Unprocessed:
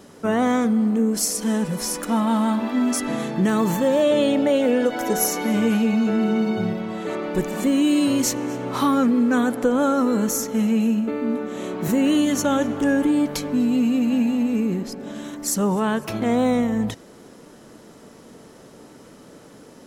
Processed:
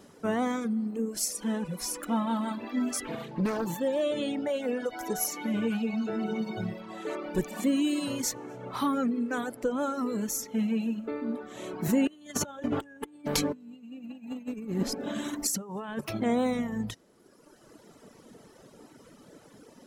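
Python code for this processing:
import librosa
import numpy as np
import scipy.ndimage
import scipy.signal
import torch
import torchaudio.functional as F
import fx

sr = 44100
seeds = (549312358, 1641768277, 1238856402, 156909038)

y = fx.doppler_dist(x, sr, depth_ms=0.5, at=(3.05, 3.67))
y = fx.over_compress(y, sr, threshold_db=-26.0, ratio=-0.5, at=(12.07, 16.01))
y = fx.dereverb_blind(y, sr, rt60_s=1.7)
y = fx.rider(y, sr, range_db=4, speed_s=2.0)
y = y * librosa.db_to_amplitude(-6.5)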